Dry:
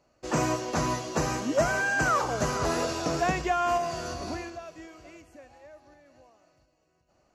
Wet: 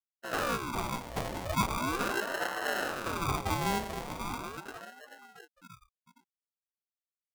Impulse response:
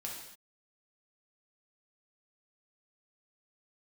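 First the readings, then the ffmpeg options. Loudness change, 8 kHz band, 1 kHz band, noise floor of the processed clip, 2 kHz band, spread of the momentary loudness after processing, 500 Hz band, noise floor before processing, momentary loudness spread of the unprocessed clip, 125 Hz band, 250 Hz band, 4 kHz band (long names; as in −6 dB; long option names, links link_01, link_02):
−5.5 dB, −6.5 dB, −5.0 dB, below −85 dBFS, −5.5 dB, 14 LU, −8.5 dB, −70 dBFS, 13 LU, −4.5 dB, −6.0 dB, −1.5 dB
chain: -filter_complex "[0:a]asplit=2[link_01][link_02];[link_02]adelay=436,lowpass=frequency=4600:poles=1,volume=-8dB,asplit=2[link_03][link_04];[link_04]adelay=436,lowpass=frequency=4600:poles=1,volume=0.22,asplit=2[link_05][link_06];[link_06]adelay=436,lowpass=frequency=4600:poles=1,volume=0.22[link_07];[link_03][link_05][link_07]amix=inputs=3:normalize=0[link_08];[link_01][link_08]amix=inputs=2:normalize=0,afftfilt=real='re*gte(hypot(re,im),0.0224)':imag='im*gte(hypot(re,im),0.0224)':win_size=1024:overlap=0.75,acrossover=split=230[link_09][link_10];[link_09]acompressor=threshold=-43dB:ratio=8[link_11];[link_10]firequalizer=gain_entry='entry(670,0);entry(960,-22);entry(2000,7);entry(4400,-13)':delay=0.05:min_phase=1[link_12];[link_11][link_12]amix=inputs=2:normalize=0,flanger=delay=17:depth=2.1:speed=0.84,asoftclip=type=tanh:threshold=-22.5dB,adynamicequalizer=threshold=0.00112:dfrequency=7400:dqfactor=1.2:tfrequency=7400:tqfactor=1.2:attack=5:release=100:ratio=0.375:range=1.5:mode=cutabove:tftype=bell,acrusher=samples=37:mix=1:aa=0.000001,aeval=exprs='val(0)*sin(2*PI*710*n/s+710*0.6/0.39*sin(2*PI*0.39*n/s))':channel_layout=same,volume=3.5dB"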